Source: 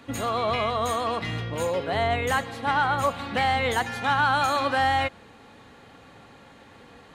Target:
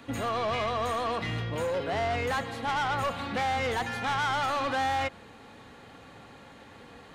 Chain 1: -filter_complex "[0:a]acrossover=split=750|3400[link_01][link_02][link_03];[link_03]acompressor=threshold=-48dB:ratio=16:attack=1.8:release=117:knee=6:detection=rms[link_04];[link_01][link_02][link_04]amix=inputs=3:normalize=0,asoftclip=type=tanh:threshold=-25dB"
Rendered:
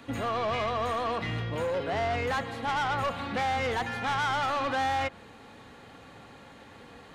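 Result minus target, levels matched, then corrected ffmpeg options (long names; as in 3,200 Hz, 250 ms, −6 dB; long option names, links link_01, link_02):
downward compressor: peak gain reduction +6.5 dB
-filter_complex "[0:a]acrossover=split=750|3400[link_01][link_02][link_03];[link_03]acompressor=threshold=-41dB:ratio=16:attack=1.8:release=117:knee=6:detection=rms[link_04];[link_01][link_02][link_04]amix=inputs=3:normalize=0,asoftclip=type=tanh:threshold=-25dB"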